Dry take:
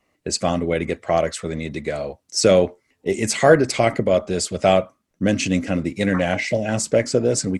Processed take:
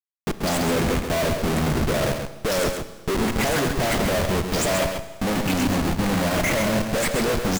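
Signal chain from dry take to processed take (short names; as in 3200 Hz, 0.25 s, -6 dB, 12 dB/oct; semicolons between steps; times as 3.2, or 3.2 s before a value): spectral delay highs late, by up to 0.22 s; Schmitt trigger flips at -27.5 dBFS; on a send: echo 0.134 s -6.5 dB; on the sum: Schroeder reverb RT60 1.5 s, combs from 28 ms, DRR 12.5 dB; gain -1.5 dB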